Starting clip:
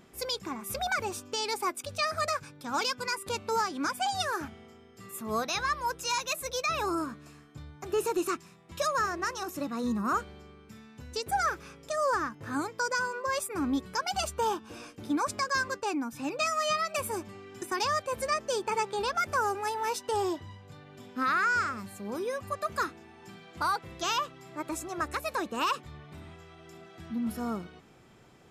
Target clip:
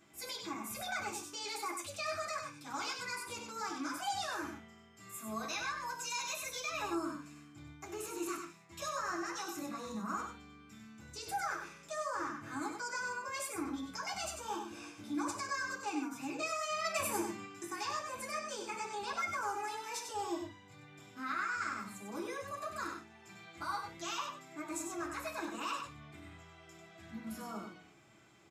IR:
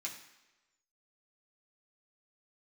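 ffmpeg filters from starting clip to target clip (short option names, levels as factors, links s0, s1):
-filter_complex "[0:a]bandreject=f=60:t=h:w=6,bandreject=f=120:t=h:w=6,bandreject=f=180:t=h:w=6,bandreject=f=240:t=h:w=6,alimiter=level_in=1.33:limit=0.0631:level=0:latency=1:release=16,volume=0.75,asettb=1/sr,asplit=3[s0][s1][s2];[s0]atrim=end=16.844[s3];[s1]atrim=start=16.84:end=17.46,asetpts=PTS-STARTPTS,afade=t=in:d=0.004:c=qsin,afade=t=out:st=0.616:d=0.004:c=qsin,acontrast=35[s4];[s2]atrim=start=17.456[s5];[s3][s4]acrossfade=d=0.004:c1=hsin:c2=qsin[s6];[s6][s5]acrossfade=d=0.004:c1=qsin:c2=hsin,aecho=1:1:96:0.501[s7];[1:a]atrim=start_sample=2205,atrim=end_sample=3528[s8];[s7][s8]afir=irnorm=-1:irlink=0,volume=0.708"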